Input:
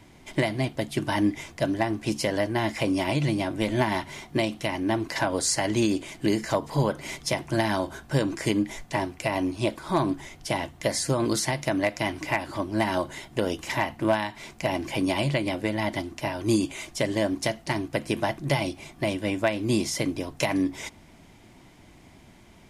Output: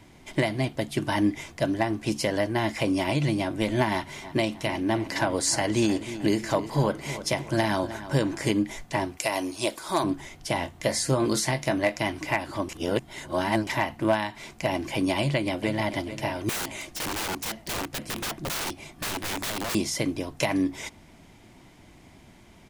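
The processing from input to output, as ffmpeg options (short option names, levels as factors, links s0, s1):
-filter_complex "[0:a]asettb=1/sr,asplit=3[s0][s1][s2];[s0]atrim=end=3.934[s3];[s1]atrim=start=3.93:end=8.51,asetpts=PTS-STARTPTS,afade=t=in:d=0.004:c=qsin,afade=t=out:st=4.576:d=0.004:c=qsin,asplit=2[s4][s5];[s5]adelay=310,lowpass=f=3700:p=1,volume=0.224,asplit=2[s6][s7];[s7]adelay=310,lowpass=f=3700:p=1,volume=0.46,asplit=2[s8][s9];[s9]adelay=310,lowpass=f=3700:p=1,volume=0.46,asplit=2[s10][s11];[s11]adelay=310,lowpass=f=3700:p=1,volume=0.46,asplit=2[s12][s13];[s13]adelay=310,lowpass=f=3700:p=1,volume=0.46[s14];[s4][s6][s8][s10][s12][s14]amix=inputs=6:normalize=0,atrim=end_sample=201978[s15];[s2]atrim=start=8.506[s16];[s3][s15]acrossfade=d=0.004:c1=hsin:c2=qsin[s17];[s17][s16]acrossfade=d=0.004:c1=qsin:c2=hsin,asettb=1/sr,asplit=3[s18][s19][s20];[s18]atrim=end=9.174[s21];[s19]atrim=start=9.17:end=10.04,asetpts=PTS-STARTPTS,afade=t=in:d=0.004:c=qsin,afade=t=out:st=0.866:d=0.004:c=qsin,bass=f=250:g=-12,treble=f=4000:g=10[s22];[s20]atrim=start=10.036[s23];[s21][s22]acrossfade=d=0.004:c1=hsin:c2=qsin[s24];[s24][s23]acrossfade=d=0.004:c1=qsin:c2=hsin,asettb=1/sr,asplit=3[s25][s26][s27];[s25]atrim=end=10.544[s28];[s26]atrim=start=10.54:end=11.96,asetpts=PTS-STARTPTS,afade=t=in:d=0.004:c=qsin,afade=t=out:st=1.416:d=0.004:c=qsin,asplit=2[s29][s30];[s30]adelay=23,volume=0.355[s31];[s29][s31]amix=inputs=2:normalize=0,atrim=end_sample=62622[s32];[s27]atrim=start=11.956[s33];[s28][s32]acrossfade=d=0.004:c1=hsin:c2=qsin[s34];[s34][s33]acrossfade=d=0.004:c1=qsin:c2=hsin,asplit=2[s35][s36];[s36]afade=t=in:st=15.18:d=0.01,afade=t=out:st=15.91:d=0.01,aecho=0:1:440|880|1320|1760|2200:0.281838|0.126827|0.0570723|0.0256825|0.0115571[s37];[s35][s37]amix=inputs=2:normalize=0,asettb=1/sr,asplit=3[s38][s39][s40];[s38]atrim=end=16.494[s41];[s39]atrim=start=16.49:end=19.75,asetpts=PTS-STARTPTS,afade=t=in:d=0.004:c=qsin,afade=t=out:st=3.256:d=0.004:c=qsin,aeval=exprs='(mod(18.8*val(0)+1,2)-1)/18.8':c=same[s42];[s40]atrim=start=19.746[s43];[s41][s42]acrossfade=d=0.004:c1=hsin:c2=qsin[s44];[s44][s43]acrossfade=d=0.004:c1=qsin:c2=hsin,asplit=3[s45][s46][s47];[s45]atrim=end=12.692[s48];[s46]atrim=start=12.688:end=13.672,asetpts=PTS-STARTPTS,areverse[s49];[s47]atrim=start=13.668[s50];[s48][s49]acrossfade=d=0.004:c1=hsin:c2=hsin[s51];[s51][s50]acrossfade=d=0.004:c1=hsin:c2=hsin"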